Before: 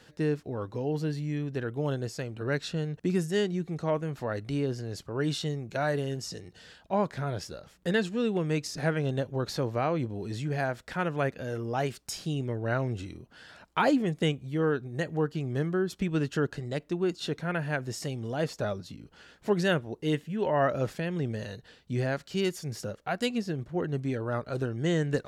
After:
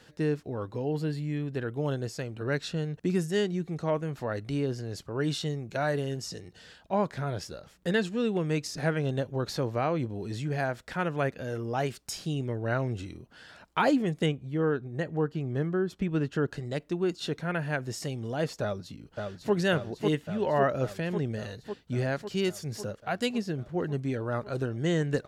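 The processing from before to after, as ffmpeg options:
-filter_complex "[0:a]asettb=1/sr,asplit=3[s0][s1][s2];[s0]atrim=end=0.664[s3];[s1]atrim=start=0.66:end=1.7,asetpts=PTS-STARTPTS,afade=t=in:d=0.004:c=qsin,afade=t=out:st=1.036:d=0.004:c=qsin,bandreject=f=5900:w=7.4[s4];[s2]atrim=start=1.696[s5];[s3][s4]acrossfade=d=0.004:c1=hsin:c2=qsin[s6];[s6][s5]acrossfade=d=0.004:c1=qsin:c2=hsin,asettb=1/sr,asplit=3[s7][s8][s9];[s7]atrim=end=14.264[s10];[s8]atrim=start=14.26:end=16.48,asetpts=PTS-STARTPTS,afade=t=in:d=0.004:c=qsin,afade=t=out:st=2.216:d=0.004:c=qsin,highshelf=f=3400:g=-10[s11];[s9]atrim=start=16.476[s12];[s10][s11]acrossfade=d=0.004:c1=hsin:c2=qsin[s13];[s13][s12]acrossfade=d=0.004:c1=qsin:c2=hsin,asplit=2[s14][s15];[s15]afade=t=in:st=18.62:d=0.01,afade=t=out:st=19.53:d=0.01,aecho=0:1:550|1100|1650|2200|2750|3300|3850|4400|4950|5500|6050|6600:0.630957|0.473218|0.354914|0.266185|0.199639|0.149729|0.112297|0.0842226|0.063167|0.0473752|0.0355314|0.0266486[s16];[s14][s16]amix=inputs=2:normalize=0"

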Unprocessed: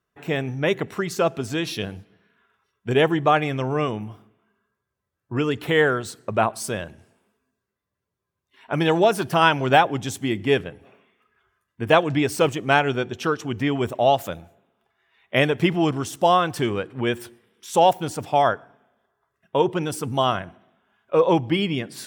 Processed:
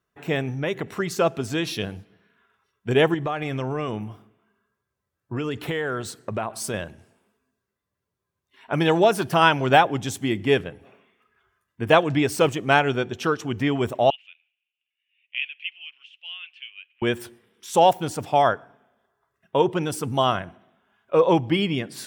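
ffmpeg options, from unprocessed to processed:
-filter_complex "[0:a]asettb=1/sr,asplit=3[s0][s1][s2];[s0]atrim=end=0.514[s3];[s1]atrim=start=0.51:end=1,asetpts=PTS-STARTPTS,afade=t=in:d=0.004:c=qsin,afade=t=out:st=0.486:d=0.004:c=qsin,acompressor=threshold=0.0562:ratio=2:attack=3.2:release=140:knee=1:detection=peak[s4];[s2]atrim=start=0.996[s5];[s3][s4]acrossfade=d=0.004:c1=hsin:c2=qsin[s6];[s6][s5]acrossfade=d=0.004:c1=qsin:c2=hsin,asettb=1/sr,asplit=3[s7][s8][s9];[s7]atrim=end=3.144[s10];[s8]atrim=start=3.14:end=6.74,asetpts=PTS-STARTPTS,afade=t=in:d=0.004:c=qsin,afade=t=out:st=3.596:d=0.004:c=qsin,acompressor=threshold=0.0708:ratio=6:attack=3.2:release=140:knee=1:detection=peak[s11];[s9]atrim=start=6.736[s12];[s10][s11]acrossfade=d=0.004:c1=hsin:c2=qsin[s13];[s13][s12]acrossfade=d=0.004:c1=qsin:c2=hsin,asettb=1/sr,asplit=3[s14][s15][s16];[s14]atrim=end=14.104[s17];[s15]atrim=start=14.1:end=17.02,asetpts=PTS-STARTPTS,afade=t=in:d=0.004:c=qsin,afade=t=out:st=2.916:d=0.004:c=qsin,asuperpass=centerf=2700:order=4:qfactor=4.2[s18];[s16]atrim=start=17.016[s19];[s17][s18]acrossfade=d=0.004:c1=hsin:c2=qsin[s20];[s20][s19]acrossfade=d=0.004:c1=qsin:c2=hsin"

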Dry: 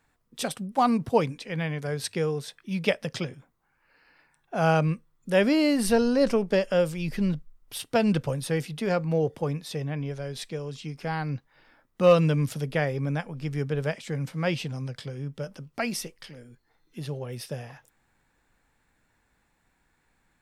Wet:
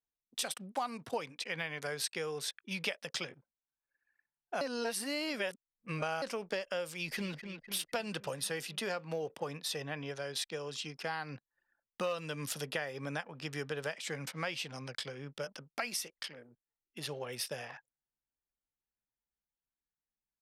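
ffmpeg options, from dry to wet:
-filter_complex "[0:a]asplit=2[s0][s1];[s1]afade=t=in:st=6.93:d=0.01,afade=t=out:st=7.34:d=0.01,aecho=0:1:250|500|750|1000|1250|1500|1750|2000|2250|2500:0.298538|0.208977|0.146284|0.102399|0.071679|0.0501753|0.0351227|0.0245859|0.0172101|0.0120471[s2];[s0][s2]amix=inputs=2:normalize=0,asettb=1/sr,asplit=3[s3][s4][s5];[s3]atrim=end=8.004[s6];[s4]atrim=start=8:end=13.97,asetpts=PTS-STARTPTS,afade=t=in:d=0.004:c=qsin,afade=t=out:st=5.966:d=0.004:c=qsin,bandreject=f=2200:w=12[s7];[s5]atrim=start=13.966[s8];[s6][s7]acrossfade=d=0.004:c1=hsin:c2=qsin[s9];[s9][s8]acrossfade=d=0.004:c1=qsin:c2=hsin,asplit=3[s10][s11][s12];[s10]atrim=end=4.612[s13];[s11]atrim=start=4.608:end=6.222,asetpts=PTS-STARTPTS,areverse[s14];[s12]atrim=start=6.218[s15];[s13][s14]acrossfade=d=0.004:c1=hsin:c2=hsin[s16];[s16][s15]acrossfade=d=0.004:c1=hsin:c2=hsin,anlmdn=0.01,highpass=f=1300:p=1,acompressor=threshold=0.0112:ratio=6,volume=1.88"

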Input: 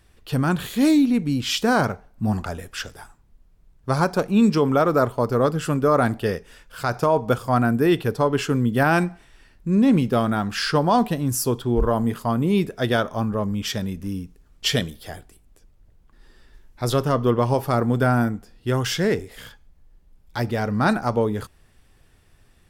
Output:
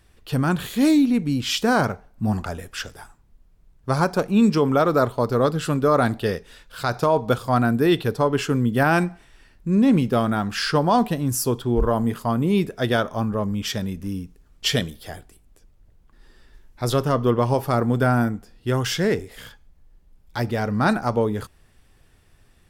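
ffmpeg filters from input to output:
-filter_complex "[0:a]asettb=1/sr,asplit=3[s0][s1][s2];[s0]atrim=end=4.794[s3];[s1]atrim=start=4.79:end=8.15,asetpts=PTS-STARTPTS,afade=t=in:d=0.004:c=qsin,afade=t=out:st=3.356:d=0.004:c=qsin,equalizer=f=3900:w=4.2:g=8.5[s4];[s2]atrim=start=8.146[s5];[s3][s4]acrossfade=d=0.004:c1=hsin:c2=qsin[s6];[s6][s5]acrossfade=d=0.004:c1=qsin:c2=hsin"

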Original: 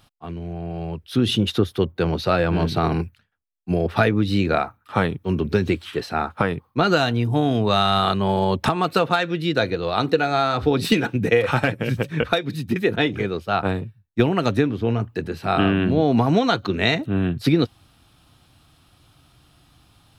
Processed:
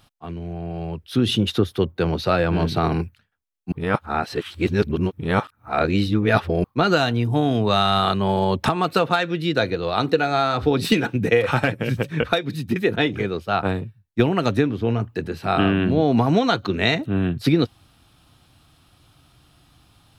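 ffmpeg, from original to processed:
-filter_complex "[0:a]asplit=3[s0][s1][s2];[s0]atrim=end=3.722[s3];[s1]atrim=start=3.718:end=6.642,asetpts=PTS-STARTPTS,areverse[s4];[s2]atrim=start=6.638[s5];[s3][s4]acrossfade=d=0.004:c1=hsin:c2=hsin[s6];[s6][s5]acrossfade=d=0.004:c1=hsin:c2=hsin"

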